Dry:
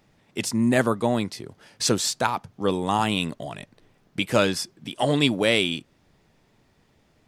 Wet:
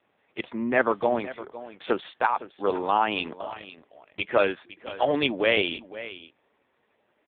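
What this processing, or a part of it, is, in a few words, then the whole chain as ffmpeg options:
satellite phone: -af "highpass=frequency=100:poles=1,highpass=380,lowpass=3100,aecho=1:1:510:0.168,volume=2.5dB" -ar 8000 -c:a libopencore_amrnb -b:a 5150

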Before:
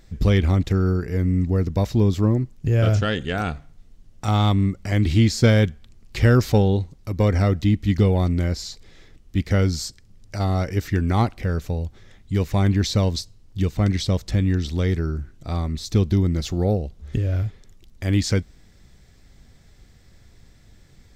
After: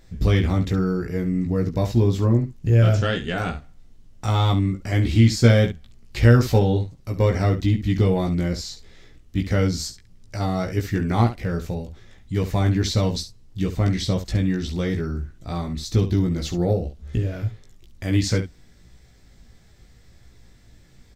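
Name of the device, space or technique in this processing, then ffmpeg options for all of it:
slapback doubling: -filter_complex "[0:a]asplit=3[link_01][link_02][link_03];[link_02]adelay=17,volume=-3dB[link_04];[link_03]adelay=69,volume=-10.5dB[link_05];[link_01][link_04][link_05]amix=inputs=3:normalize=0,volume=-2dB"

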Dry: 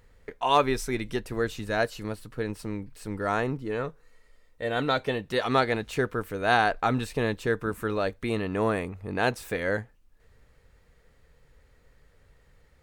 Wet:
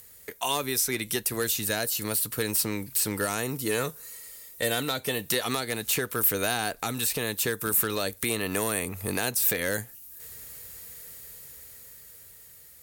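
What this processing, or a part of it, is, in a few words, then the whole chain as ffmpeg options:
FM broadcast chain: -filter_complex "[0:a]highpass=74,dynaudnorm=framelen=540:gausssize=7:maxgain=9.5dB,acrossover=split=400|2500|5000[link_01][link_02][link_03][link_04];[link_01]acompressor=threshold=-29dB:ratio=4[link_05];[link_02]acompressor=threshold=-29dB:ratio=4[link_06];[link_03]acompressor=threshold=-44dB:ratio=4[link_07];[link_04]acompressor=threshold=-55dB:ratio=4[link_08];[link_05][link_06][link_07][link_08]amix=inputs=4:normalize=0,aemphasis=mode=production:type=75fm,alimiter=limit=-16.5dB:level=0:latency=1:release=336,asoftclip=type=hard:threshold=-19.5dB,lowpass=frequency=15000:width=0.5412,lowpass=frequency=15000:width=1.3066,aemphasis=mode=production:type=75fm"

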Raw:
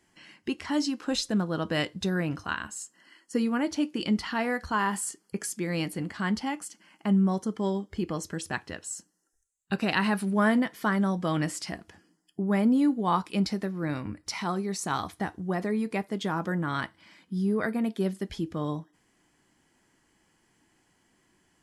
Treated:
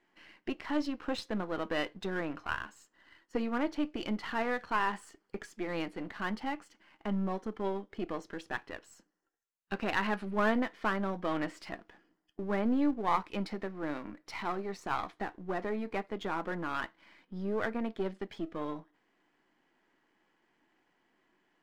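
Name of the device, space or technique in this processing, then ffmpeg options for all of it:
crystal radio: -af "highpass=280,lowpass=2700,aeval=exprs='if(lt(val(0),0),0.447*val(0),val(0))':channel_layout=same"

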